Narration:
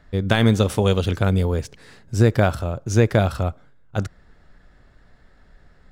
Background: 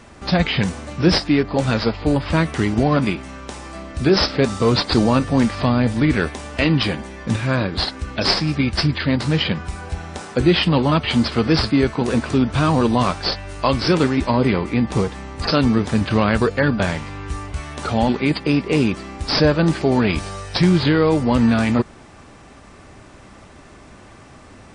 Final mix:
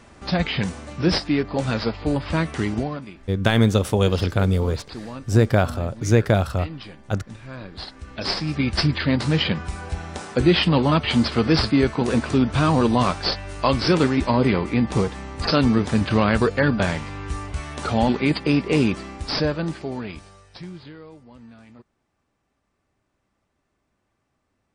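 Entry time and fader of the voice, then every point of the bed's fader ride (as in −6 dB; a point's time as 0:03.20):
3.15 s, −0.5 dB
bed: 0:02.75 −4.5 dB
0:03.05 −19 dB
0:07.40 −19 dB
0:08.75 −1.5 dB
0:19.00 −1.5 dB
0:21.30 −30 dB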